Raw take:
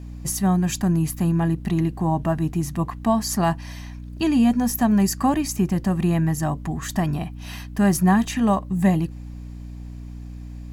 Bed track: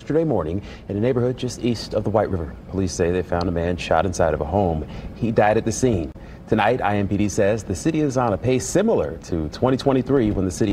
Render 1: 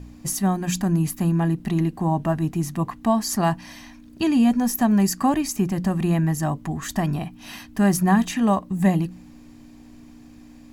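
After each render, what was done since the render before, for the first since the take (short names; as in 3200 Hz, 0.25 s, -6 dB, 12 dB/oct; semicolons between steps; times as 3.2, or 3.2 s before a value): de-hum 60 Hz, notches 3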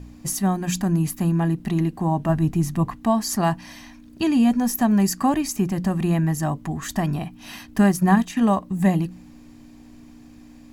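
2.29–2.96 low shelf 120 Hz +10.5 dB; 7.66–8.49 transient shaper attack +4 dB, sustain -6 dB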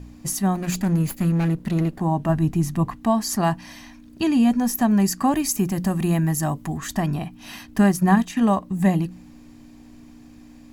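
0.55–2 minimum comb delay 0.44 ms; 5.34–6.78 high shelf 7500 Hz +10 dB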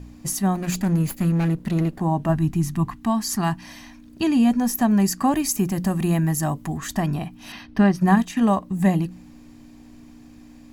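2.36–3.62 bell 540 Hz -14 dB 0.59 oct; 7.52–8.01 polynomial smoothing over 15 samples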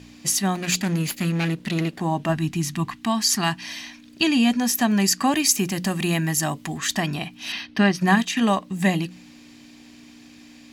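weighting filter D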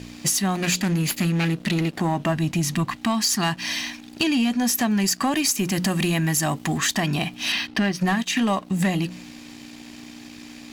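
compressor 4:1, threshold -26 dBFS, peak gain reduction 12 dB; sample leveller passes 2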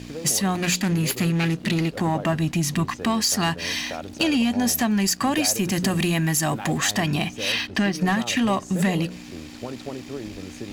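add bed track -16 dB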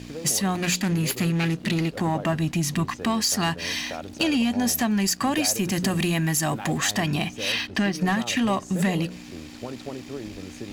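gain -1.5 dB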